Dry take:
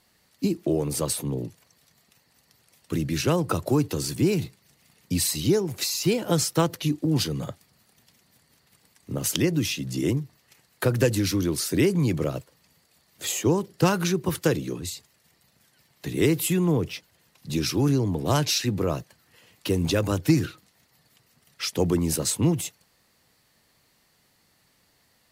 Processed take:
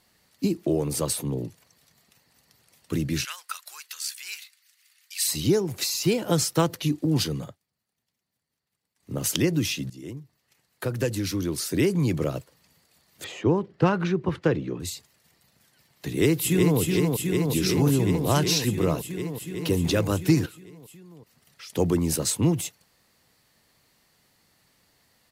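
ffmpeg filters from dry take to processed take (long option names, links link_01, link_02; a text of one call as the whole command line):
ffmpeg -i in.wav -filter_complex "[0:a]asplit=3[link_01][link_02][link_03];[link_01]afade=type=out:start_time=3.23:duration=0.02[link_04];[link_02]highpass=frequency=1500:width=0.5412,highpass=frequency=1500:width=1.3066,afade=type=in:start_time=3.23:duration=0.02,afade=type=out:start_time=5.26:duration=0.02[link_05];[link_03]afade=type=in:start_time=5.26:duration=0.02[link_06];[link_04][link_05][link_06]amix=inputs=3:normalize=0,asettb=1/sr,asplit=3[link_07][link_08][link_09];[link_07]atrim=end=13.244[link_10];[link_08]atrim=start=13.24:end=14.8,asetpts=PTS-STARTPTS,afade=type=in:duration=0.004:curve=qsin,afade=type=out:start_time=1.556:duration=0.004:curve=qsin,lowpass=2400[link_11];[link_09]atrim=start=14.796[link_12];[link_10][link_11]acrossfade=duration=0.004:curve1=hsin:curve2=qsin[link_13];[link_13][link_12]acrossfade=duration=0.004:curve1=qsin:curve2=hsin,asplit=2[link_14][link_15];[link_15]afade=type=in:start_time=16.08:duration=0.01,afade=type=out:start_time=16.79:duration=0.01,aecho=0:1:370|740|1110|1480|1850|2220|2590|2960|3330|3700|4070|4440:0.668344|0.568092|0.482878|0.410447|0.34888|0.296548|0.252066|0.214256|0.182117|0.1548|0.13158|0.111843[link_16];[link_14][link_16]amix=inputs=2:normalize=0,asettb=1/sr,asplit=3[link_17][link_18][link_19];[link_17]atrim=end=20.464[link_20];[link_18]atrim=start=20.46:end=21.7,asetpts=PTS-STARTPTS,afade=type=in:duration=0.004:curve=qsin,afade=type=out:start_time=1.236:duration=0.004:curve=qsin,acompressor=threshold=-47dB:ratio=2.5:attack=3.2:release=140:knee=1:detection=peak[link_21];[link_19]atrim=start=21.696[link_22];[link_20][link_21]acrossfade=duration=0.004:curve1=hsin:curve2=qsin[link_23];[link_23][link_22]acrossfade=duration=0.004:curve1=qsin:curve2=hsin,asplit=4[link_24][link_25][link_26][link_27];[link_24]atrim=end=7.57,asetpts=PTS-STARTPTS,afade=type=out:start_time=7.34:duration=0.23:silence=0.0891251[link_28];[link_25]atrim=start=7.57:end=8.95,asetpts=PTS-STARTPTS,volume=-21dB[link_29];[link_26]atrim=start=8.95:end=9.9,asetpts=PTS-STARTPTS,afade=type=in:duration=0.23:silence=0.0891251,afade=type=out:start_time=0.946:duration=0.004:curve=hsin:silence=0.141254[link_30];[link_27]atrim=start=9.9,asetpts=PTS-STARTPTS,afade=type=in:duration=2.31:silence=0.141254[link_31];[link_28][link_29][link_30][link_31]concat=n=4:v=0:a=1" out.wav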